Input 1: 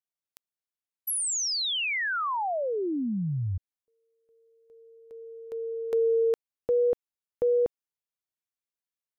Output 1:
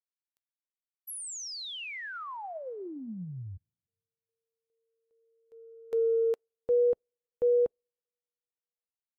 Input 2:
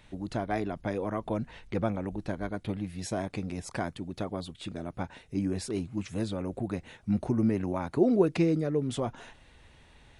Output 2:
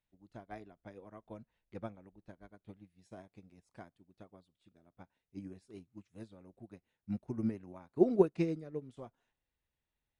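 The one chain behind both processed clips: two-slope reverb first 0.27 s, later 2 s, from -21 dB, DRR 18.5 dB; upward expansion 2.5:1, over -40 dBFS; trim -1 dB

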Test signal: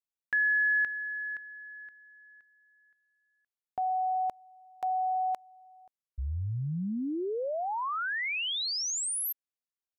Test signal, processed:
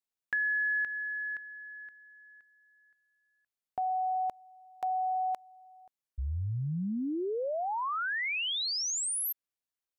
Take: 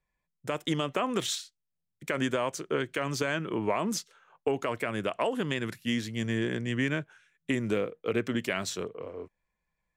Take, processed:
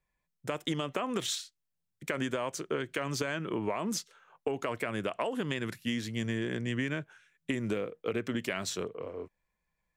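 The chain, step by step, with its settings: compression, threshold -28 dBFS

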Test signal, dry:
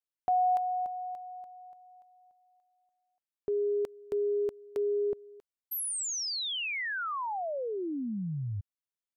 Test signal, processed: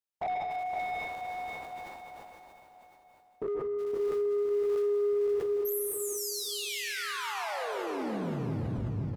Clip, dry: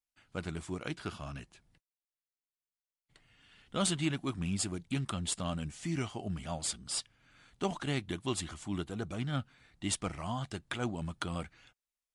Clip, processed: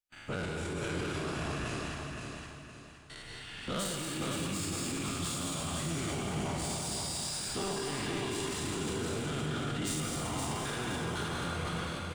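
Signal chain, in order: every event in the spectrogram widened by 120 ms; in parallel at +3 dB: compression, threshold -39 dBFS; on the sum: gate with hold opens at -46 dBFS, closes at -55 dBFS, hold 39 ms, range -16 dB; saturation -25 dBFS; plate-style reverb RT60 1.6 s, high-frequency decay 1×, pre-delay 120 ms, DRR -2.5 dB; peak limiter -30 dBFS; feedback delay 517 ms, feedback 37%, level -5 dB; decay stretcher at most 28 dB/s; trim +1 dB

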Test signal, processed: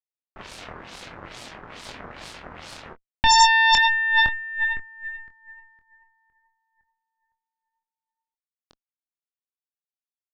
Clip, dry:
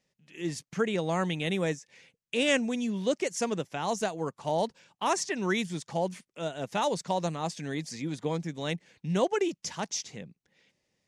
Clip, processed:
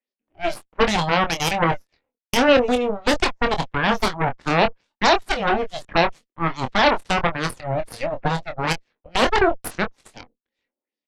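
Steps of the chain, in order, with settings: LFO low-pass sine 2.3 Hz 790–4700 Hz; steep high-pass 230 Hz 72 dB/octave; bass shelf 340 Hz +12 dB; Chebyshev shaper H 7 -16 dB, 8 -8 dB, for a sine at -9.5 dBFS; doubling 24 ms -8 dB; trim +1 dB

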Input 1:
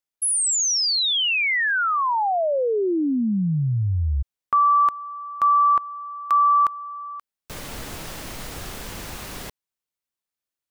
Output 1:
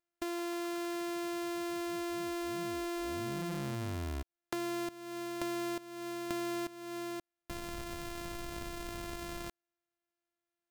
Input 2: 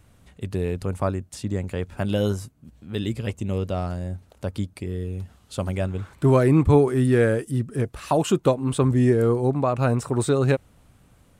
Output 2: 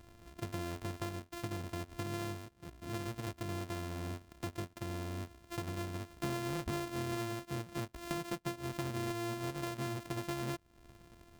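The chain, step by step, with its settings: sorted samples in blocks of 128 samples; compression 5:1, threshold -35 dBFS; trim -3 dB

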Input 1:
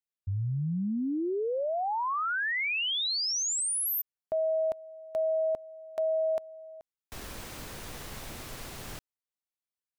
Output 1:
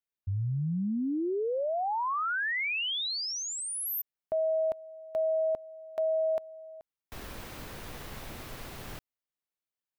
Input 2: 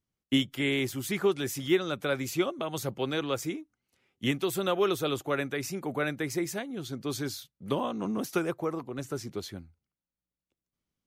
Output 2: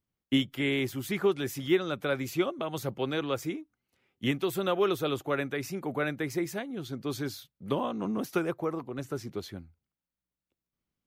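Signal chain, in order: peaking EQ 7.7 kHz -6 dB 1.6 oct

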